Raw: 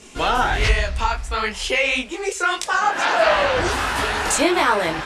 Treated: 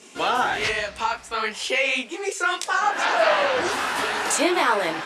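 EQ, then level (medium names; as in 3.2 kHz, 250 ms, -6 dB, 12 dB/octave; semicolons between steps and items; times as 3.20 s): high-pass 220 Hz 12 dB/octave; -2.5 dB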